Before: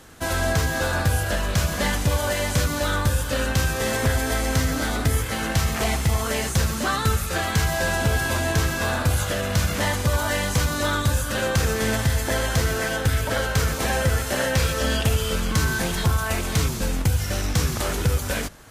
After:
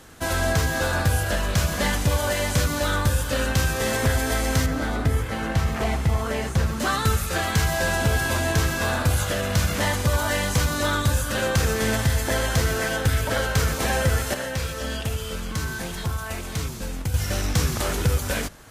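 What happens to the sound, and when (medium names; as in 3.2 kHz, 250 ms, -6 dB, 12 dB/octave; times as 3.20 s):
4.66–6.80 s: treble shelf 3.1 kHz -11.5 dB
14.34–17.14 s: gain -6.5 dB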